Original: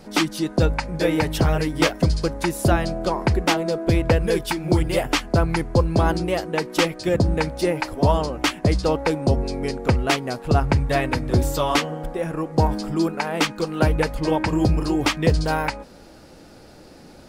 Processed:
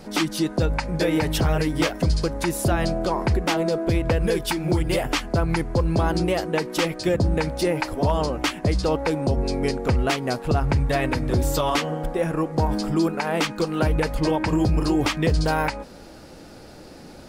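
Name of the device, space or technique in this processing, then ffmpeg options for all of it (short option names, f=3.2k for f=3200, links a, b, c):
clipper into limiter: -af "asoftclip=type=hard:threshold=-8.5dB,alimiter=limit=-15dB:level=0:latency=1:release=92,volume=2.5dB"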